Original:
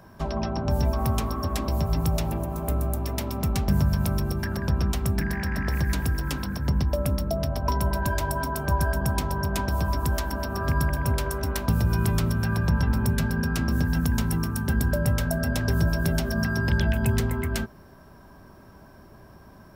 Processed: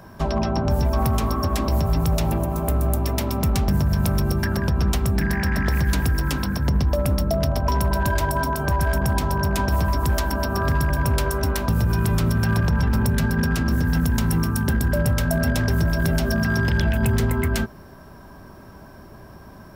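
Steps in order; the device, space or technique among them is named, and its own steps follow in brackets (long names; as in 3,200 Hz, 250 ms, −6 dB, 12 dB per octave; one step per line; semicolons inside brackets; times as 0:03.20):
limiter into clipper (brickwall limiter −17.5 dBFS, peak gain reduction 5.5 dB; hard clipping −20 dBFS, distortion −24 dB)
level +6 dB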